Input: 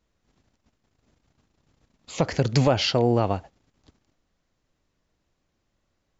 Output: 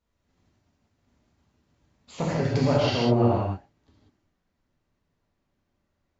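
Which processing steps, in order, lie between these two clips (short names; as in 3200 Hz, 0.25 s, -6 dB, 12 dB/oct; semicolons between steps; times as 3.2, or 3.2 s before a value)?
high shelf 4200 Hz -3.5 dB, from 2.15 s -9.5 dB; non-linear reverb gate 0.22 s flat, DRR -6.5 dB; gain -8 dB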